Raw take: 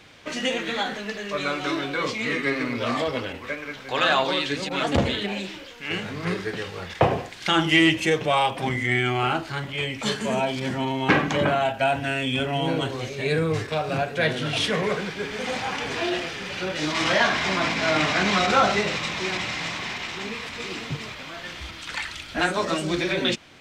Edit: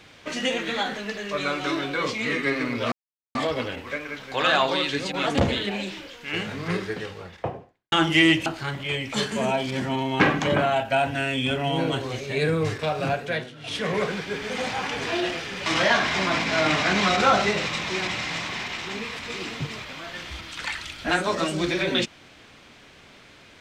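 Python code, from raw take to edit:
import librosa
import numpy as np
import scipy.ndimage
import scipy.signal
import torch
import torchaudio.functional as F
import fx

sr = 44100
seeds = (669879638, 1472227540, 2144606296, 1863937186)

y = fx.studio_fade_out(x, sr, start_s=6.29, length_s=1.2)
y = fx.edit(y, sr, fx.insert_silence(at_s=2.92, length_s=0.43),
    fx.cut(start_s=8.03, length_s=1.32),
    fx.fade_down_up(start_s=14.04, length_s=0.82, db=-18.5, fade_s=0.39),
    fx.cut(start_s=16.55, length_s=0.41), tone=tone)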